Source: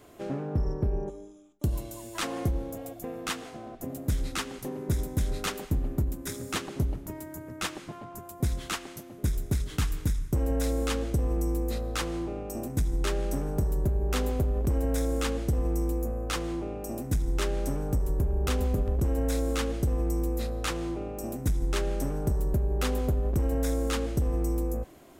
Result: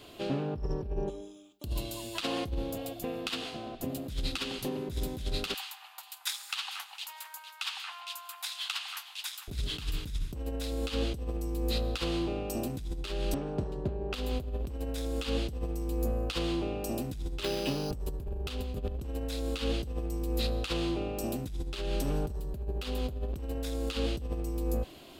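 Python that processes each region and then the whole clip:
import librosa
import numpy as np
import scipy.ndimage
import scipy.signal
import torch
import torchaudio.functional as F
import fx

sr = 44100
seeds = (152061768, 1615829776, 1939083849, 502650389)

y = fx.chain(x, sr, fx.highpass(hz=110.0, slope=6),
    fx.high_shelf(hz=12000.0, db=10.0), at=(1.21, 1.65))
y = fx.chain(y, sr, fx.steep_highpass(hz=780.0, slope=72),
    fx.echo_alternate(ms=228, hz=2200.0, feedback_pct=57, wet_db=-11.0), at=(5.54, 9.48))
y = fx.chain(y, sr, fx.highpass(hz=220.0, slope=6),
    fx.spacing_loss(db_at_10k=23), at=(13.34, 14.14))
y = fx.chain(y, sr, fx.highpass(hz=120.0, slope=12),
    fx.high_shelf(hz=8800.0, db=-6.0),
    fx.resample_bad(factor=8, down='none', up='hold'), at=(17.43, 17.91))
y = fx.band_shelf(y, sr, hz=3500.0, db=11.5, octaves=1.1)
y = fx.over_compress(y, sr, threshold_db=-29.0, ratio=-0.5)
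y = y * 10.0 ** (-2.0 / 20.0)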